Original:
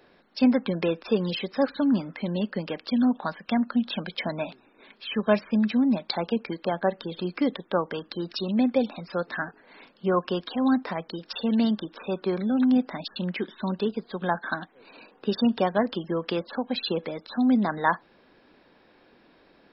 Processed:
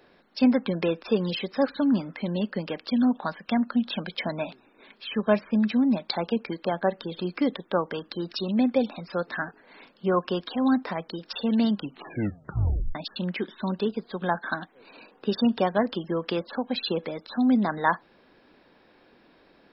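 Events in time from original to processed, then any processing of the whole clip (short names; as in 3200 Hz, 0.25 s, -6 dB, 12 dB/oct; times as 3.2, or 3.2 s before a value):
5.09–5.55 LPF 2900 Hz 6 dB/oct
11.7 tape stop 1.25 s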